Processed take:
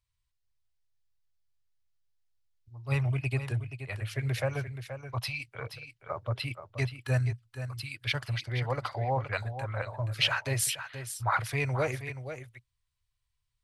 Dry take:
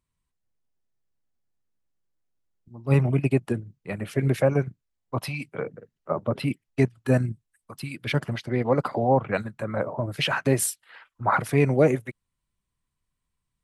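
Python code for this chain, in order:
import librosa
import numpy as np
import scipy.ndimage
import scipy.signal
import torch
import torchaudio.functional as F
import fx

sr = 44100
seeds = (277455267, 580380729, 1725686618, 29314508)

p1 = fx.curve_eq(x, sr, hz=(120.0, 180.0, 640.0, 4600.0, 8100.0), db=(0, -25, -9, 3, -4))
y = p1 + fx.echo_single(p1, sr, ms=477, db=-10.0, dry=0)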